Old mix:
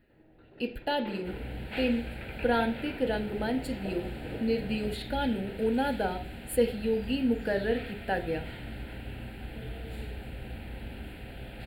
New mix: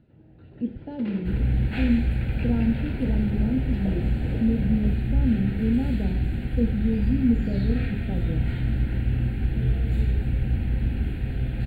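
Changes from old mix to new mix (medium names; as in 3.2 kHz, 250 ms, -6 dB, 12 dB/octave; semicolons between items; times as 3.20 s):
speech: add band-pass filter 200 Hz, Q 1.4; second sound: send +10.0 dB; master: add tone controls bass +15 dB, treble +2 dB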